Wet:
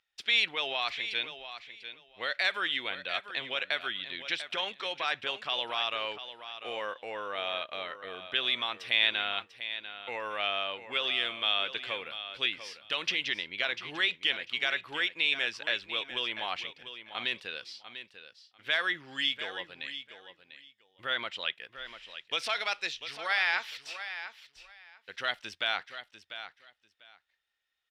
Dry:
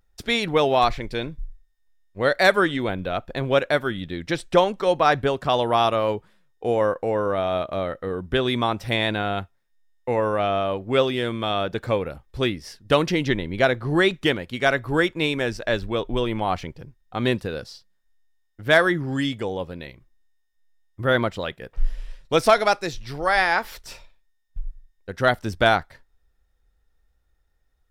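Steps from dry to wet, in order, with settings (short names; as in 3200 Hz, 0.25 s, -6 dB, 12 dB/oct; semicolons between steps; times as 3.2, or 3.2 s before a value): limiter -13.5 dBFS, peak gain reduction 9 dB; band-pass 2900 Hz, Q 2.2; on a send: feedback echo 0.695 s, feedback 18%, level -11.5 dB; on the sum: gain +5 dB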